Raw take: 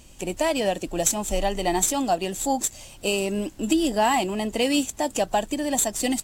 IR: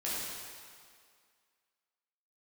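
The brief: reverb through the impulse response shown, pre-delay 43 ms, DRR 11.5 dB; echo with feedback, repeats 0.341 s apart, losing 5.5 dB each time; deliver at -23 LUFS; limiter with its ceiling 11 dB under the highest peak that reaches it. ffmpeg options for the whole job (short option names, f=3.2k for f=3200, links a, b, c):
-filter_complex "[0:a]alimiter=limit=-17dB:level=0:latency=1,aecho=1:1:341|682|1023|1364|1705|2046|2387:0.531|0.281|0.149|0.079|0.0419|0.0222|0.0118,asplit=2[a][b];[1:a]atrim=start_sample=2205,adelay=43[c];[b][c]afir=irnorm=-1:irlink=0,volume=-16.5dB[d];[a][d]amix=inputs=2:normalize=0,volume=2.5dB"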